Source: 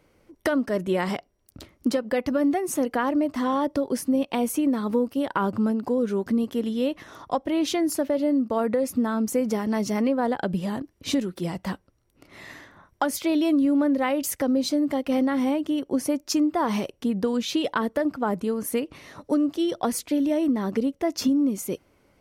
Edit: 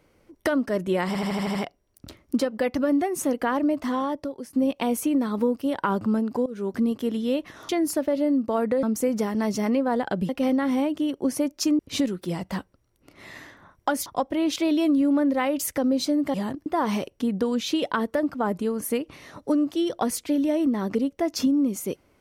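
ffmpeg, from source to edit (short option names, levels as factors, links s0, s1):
-filter_complex "[0:a]asplit=17[s0][s1][s2][s3][s4][s5][s6][s7][s8][s9][s10][s11][s12][s13][s14][s15][s16];[s0]atrim=end=1.152[s17];[s1]atrim=start=1.068:end=1.152[s18];[s2]atrim=start=1.068:end=1.152[s19];[s3]atrim=start=1.068:end=1.152[s20];[s4]atrim=start=1.068:end=1.152[s21];[s5]atrim=start=1.068:end=1.152[s22];[s6]atrim=start=1.068:end=4.05,asetpts=PTS-STARTPTS,afade=t=out:st=2.272:d=0.71:silence=0.158489[s23];[s7]atrim=start=4.05:end=5.98,asetpts=PTS-STARTPTS,afade=t=in:d=0.004:c=hsin:silence=0.158489,afade=t=out:st=1.926:d=0.004:c=hsin:silence=0.1[s24];[s8]atrim=start=5.98:end=7.212,asetpts=PTS-STARTPTS,afade=t=in:d=0.28:silence=0.1[s25];[s9]atrim=start=7.708:end=8.852[s26];[s10]atrim=start=9.148:end=10.612[s27];[s11]atrim=start=14.978:end=16.482[s28];[s12]atrim=start=10.928:end=13.202[s29];[s13]atrim=start=7.208:end=7.712[s30];[s14]atrim=start=13.198:end=14.982[s31];[s15]atrim=start=10.608:end=10.932[s32];[s16]atrim=start=16.478[s33];[s17][s18]acrossfade=d=0.004:c1=hsin:c2=hsin[s34];[s34][s19]acrossfade=d=0.004:c1=hsin:c2=hsin[s35];[s35][s20]acrossfade=d=0.004:c1=hsin:c2=hsin[s36];[s36][s21]acrossfade=d=0.004:c1=hsin:c2=hsin[s37];[s37][s22]acrossfade=d=0.004:c1=hsin:c2=hsin[s38];[s23][s24][s25]concat=n=3:v=0:a=1[s39];[s38][s39]acrossfade=d=0.004:c1=hsin:c2=hsin[s40];[s40][s26]acrossfade=d=0.004:c1=hsin:c2=hsin[s41];[s41][s27]acrossfade=d=0.004:c1=hsin:c2=hsin[s42];[s42][s28]acrossfade=d=0.004:c1=hsin:c2=hsin[s43];[s43][s29]acrossfade=d=0.004:c1=hsin:c2=hsin[s44];[s44][s30]acrossfade=d=0.004:c1=hsin:c2=hsin[s45];[s45][s31]acrossfade=d=0.004:c1=hsin:c2=hsin[s46];[s46][s32]acrossfade=d=0.004:c1=hsin:c2=hsin[s47];[s47][s33]acrossfade=d=0.004:c1=hsin:c2=hsin"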